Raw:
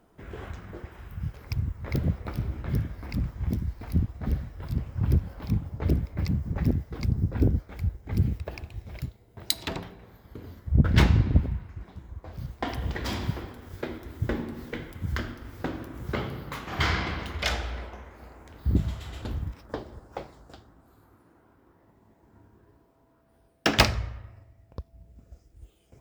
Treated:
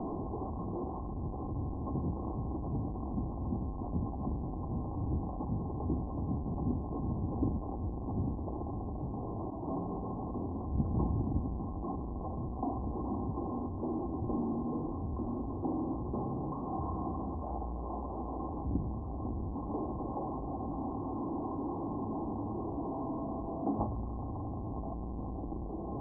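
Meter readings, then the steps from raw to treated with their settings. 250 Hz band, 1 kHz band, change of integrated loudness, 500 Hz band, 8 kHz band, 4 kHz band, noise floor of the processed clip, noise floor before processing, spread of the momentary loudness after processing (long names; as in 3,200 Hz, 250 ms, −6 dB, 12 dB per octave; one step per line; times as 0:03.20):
−1.5 dB, −1.0 dB, −7.5 dB, −2.0 dB, below −35 dB, below −40 dB, −39 dBFS, −62 dBFS, 5 LU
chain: converter with a step at zero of −17 dBFS
Chebyshev low-pass with heavy ripple 1,100 Hz, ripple 9 dB
level −8.5 dB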